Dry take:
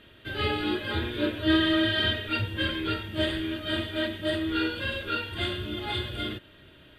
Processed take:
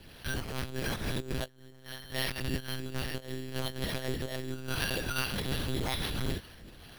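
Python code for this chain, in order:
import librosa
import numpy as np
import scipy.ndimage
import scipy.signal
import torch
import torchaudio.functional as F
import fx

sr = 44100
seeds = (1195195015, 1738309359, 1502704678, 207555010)

y = fx.dynamic_eq(x, sr, hz=270.0, q=2.8, threshold_db=-42.0, ratio=4.0, max_db=4)
y = fx.comb(y, sr, ms=3.2, depth=0.49, at=(1.4, 3.77))
y = fx.over_compress(y, sr, threshold_db=-31.0, ratio=-0.5)
y = 10.0 ** (-21.0 / 20.0) * np.tanh(y / 10.0 ** (-21.0 / 20.0))
y = fx.harmonic_tremolo(y, sr, hz=2.4, depth_pct=50, crossover_hz=450.0)
y = fx.lpc_monotone(y, sr, seeds[0], pitch_hz=130.0, order=8)
y = np.repeat(y[::6], 6)[:len(y)]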